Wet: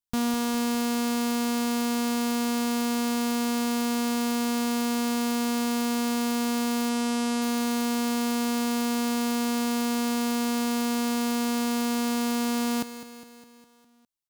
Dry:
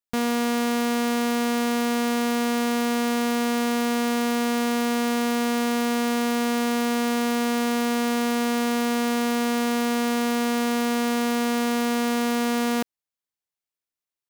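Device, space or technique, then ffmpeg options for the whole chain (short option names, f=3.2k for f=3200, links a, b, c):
low shelf boost with a cut just above: -filter_complex "[0:a]equalizer=f=250:t=o:w=1:g=5,equalizer=f=500:t=o:w=1:g=-8,equalizer=f=2k:t=o:w=1:g=-8,lowshelf=f=100:g=6,equalizer=f=250:t=o:w=1.1:g=-5,asettb=1/sr,asplit=3[a][b][c];[a]atrim=end=6.894[d];[b]atrim=start=6.89:end=7.42,asetpts=PTS-STARTPTS,afade=t=in:d=0.004:c=qsin,afade=t=out:st=0.526:d=0.004:c=qsin,lowpass=f=11k:w=0.5412,lowpass=f=11k:w=1.3066[e];[c]atrim=start=7.416[f];[d][e]acrossfade=d=0.004:c1=hsin:c2=qsin[g];[g][f]acrossfade=d=0.004:c1=qsin:c2=hsin,aecho=1:1:204|408|612|816|1020|1224:0.251|0.146|0.0845|0.049|0.0284|0.0165"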